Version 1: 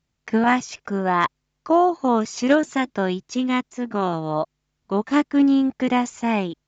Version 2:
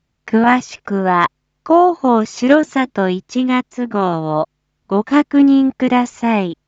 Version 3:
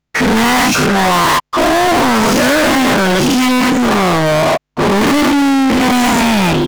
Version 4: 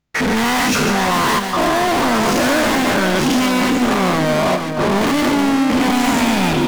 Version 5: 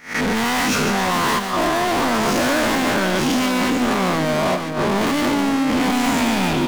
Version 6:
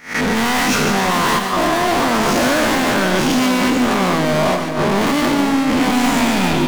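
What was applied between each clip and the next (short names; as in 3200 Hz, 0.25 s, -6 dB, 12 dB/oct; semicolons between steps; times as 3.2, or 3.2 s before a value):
high shelf 5800 Hz -9.5 dB; gain +6.5 dB
spectral dilation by 0.24 s; soft clip -10 dBFS, distortion -9 dB; sample leveller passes 5
limiter -15.5 dBFS, peak gain reduction 5.5 dB; split-band echo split 1700 Hz, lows 0.476 s, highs 0.144 s, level -6.5 dB
spectral swells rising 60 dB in 0.34 s; gain -4 dB
reverb RT60 0.85 s, pre-delay 85 ms, DRR 10 dB; gain +2.5 dB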